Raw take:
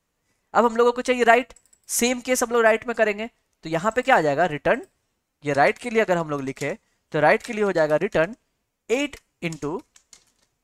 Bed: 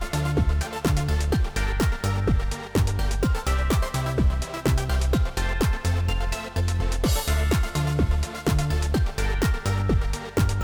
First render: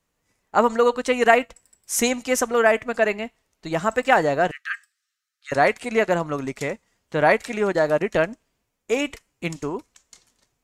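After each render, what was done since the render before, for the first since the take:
0:04.51–0:05.52: Chebyshev high-pass with heavy ripple 1,200 Hz, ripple 6 dB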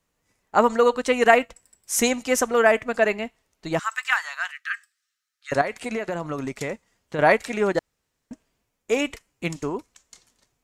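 0:03.79–0:04.61: Butterworth high-pass 1,100 Hz
0:05.61–0:07.19: downward compressor 12 to 1, threshold −23 dBFS
0:07.79–0:08.31: fill with room tone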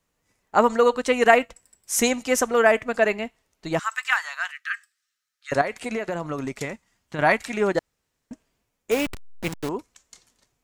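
0:06.65–0:07.57: parametric band 480 Hz −8.5 dB 0.61 octaves
0:08.91–0:09.69: hold until the input has moved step −26.5 dBFS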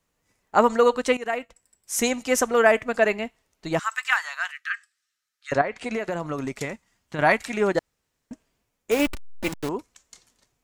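0:01.17–0:02.38: fade in, from −16.5 dB
0:04.59–0:05.94: treble cut that deepens with the level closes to 2,500 Hz, closed at −18.5 dBFS
0:08.99–0:09.52: comb filter 3.4 ms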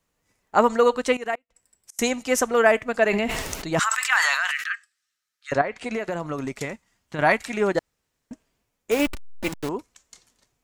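0:01.35–0:01.99: gate with flip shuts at −28 dBFS, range −33 dB
0:03.09–0:04.69: level that may fall only so fast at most 20 dB per second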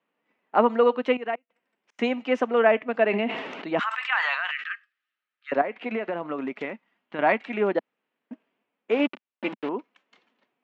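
Chebyshev band-pass filter 220–2,900 Hz, order 3
dynamic equaliser 1,600 Hz, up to −4 dB, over −33 dBFS, Q 0.94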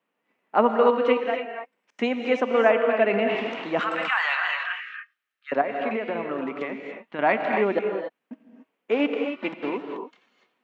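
reverb whose tail is shaped and stops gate 310 ms rising, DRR 3.5 dB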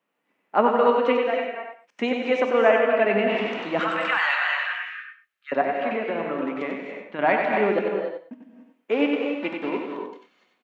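on a send: single-tap delay 94 ms −5.5 dB
on the sum: reverb whose tail is shaped and stops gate 140 ms flat, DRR 9.5 dB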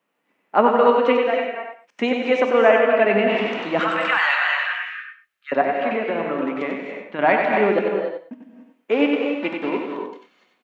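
level +3.5 dB
brickwall limiter −2 dBFS, peak gain reduction 1 dB

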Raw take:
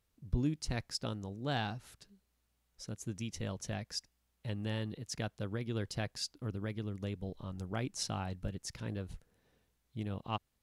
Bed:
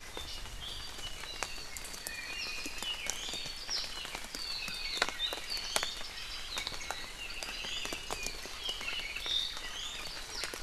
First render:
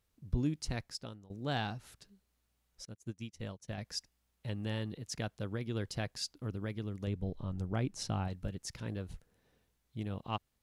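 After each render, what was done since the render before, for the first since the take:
0:00.66–0:01.30: fade out, to −19 dB
0:02.85–0:03.78: expander for the loud parts 2.5 to 1, over −52 dBFS
0:07.07–0:08.28: spectral tilt −1.5 dB per octave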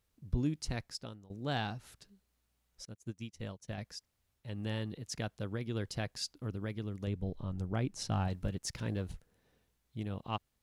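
0:03.95–0:04.47: fill with room tone, crossfade 0.24 s
0:08.11–0:09.12: leveller curve on the samples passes 1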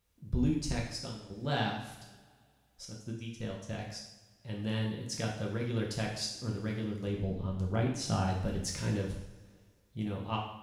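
coupled-rooms reverb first 0.73 s, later 2.3 s, from −19 dB, DRR −2 dB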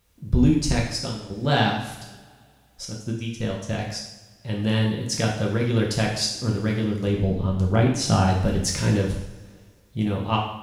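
level +11.5 dB

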